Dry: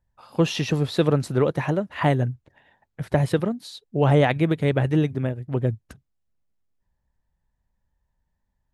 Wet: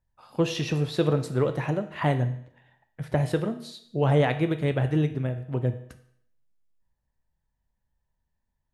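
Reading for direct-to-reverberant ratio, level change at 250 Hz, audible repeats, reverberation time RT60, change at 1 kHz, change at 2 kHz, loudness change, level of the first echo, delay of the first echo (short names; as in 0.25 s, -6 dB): 8.0 dB, -4.0 dB, none, 0.65 s, -4.0 dB, -4.0 dB, -3.5 dB, none, none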